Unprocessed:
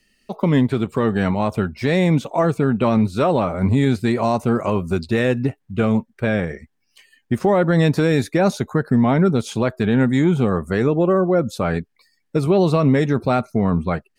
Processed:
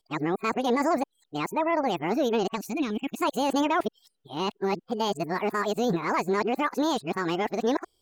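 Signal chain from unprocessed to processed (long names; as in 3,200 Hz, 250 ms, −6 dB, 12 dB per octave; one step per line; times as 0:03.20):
played backwards from end to start
change of speed 1.77×
gain on a spectral selection 0:02.56–0:03.22, 330–2,200 Hz −11 dB
level −8.5 dB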